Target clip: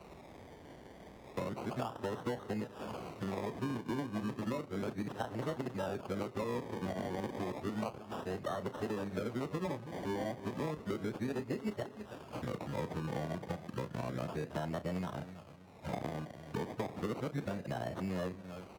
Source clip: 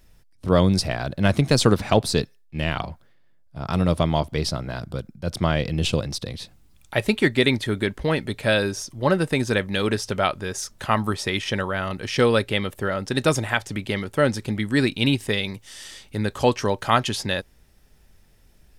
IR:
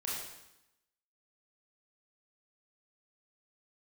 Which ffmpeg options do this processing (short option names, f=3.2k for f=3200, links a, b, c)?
-filter_complex "[0:a]areverse,aexciter=amount=15:drive=3:freq=9.2k,acompressor=threshold=-34dB:ratio=4,equalizer=f=9.7k:t=o:w=1.6:g=-12.5,asplit=2[a][b];[b]adelay=33,volume=-12.5dB[c];[a][c]amix=inputs=2:normalize=0,aecho=1:1:324|648|972:0.15|0.0434|0.0126,asplit=2[d][e];[1:a]atrim=start_sample=2205,adelay=102[f];[e][f]afir=irnorm=-1:irlink=0,volume=-24.5dB[g];[d][g]amix=inputs=2:normalize=0,acrusher=samples=26:mix=1:aa=0.000001:lfo=1:lforange=15.6:lforate=0.32,acrossover=split=150|1300[h][i][j];[h]acompressor=threshold=-52dB:ratio=4[k];[i]acompressor=threshold=-39dB:ratio=4[l];[j]acompressor=threshold=-51dB:ratio=4[m];[k][l][m]amix=inputs=3:normalize=0,highpass=87,highshelf=f=5.4k:g=-9.5,volume=4dB" -ar 48000 -c:a libvorbis -b:a 96k